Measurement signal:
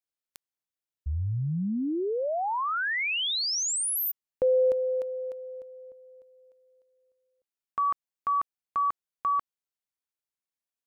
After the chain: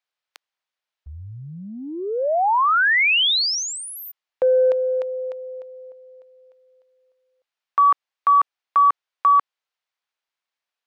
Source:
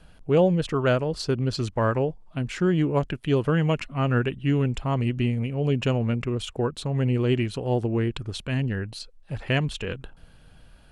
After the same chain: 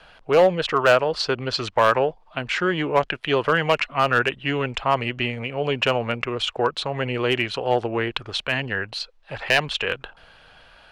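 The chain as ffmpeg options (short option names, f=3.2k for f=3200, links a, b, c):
-filter_complex "[0:a]acontrast=89,acrossover=split=530 5000:gain=0.112 1 0.112[a][b][c];[a][b][c]amix=inputs=3:normalize=0,volume=13.5dB,asoftclip=hard,volume=-13.5dB,volume=4.5dB"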